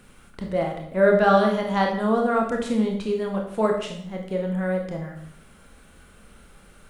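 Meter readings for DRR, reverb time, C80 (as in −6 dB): 1.0 dB, 0.65 s, 9.0 dB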